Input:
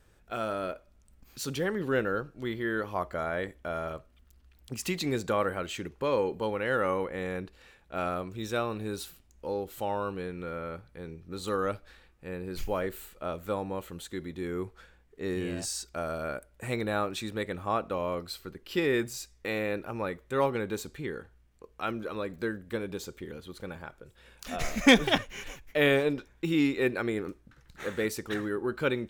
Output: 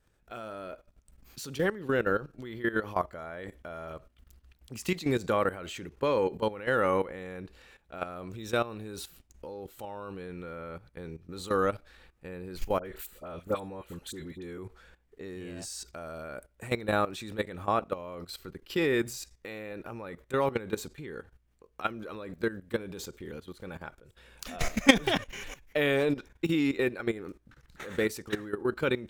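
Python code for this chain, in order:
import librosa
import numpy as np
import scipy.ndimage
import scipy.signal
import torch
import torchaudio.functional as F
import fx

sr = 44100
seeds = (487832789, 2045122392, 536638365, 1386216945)

y = fx.level_steps(x, sr, step_db=15)
y = fx.dispersion(y, sr, late='highs', ms=61.0, hz=1500.0, at=(12.79, 14.58))
y = y * librosa.db_to_amplitude(4.5)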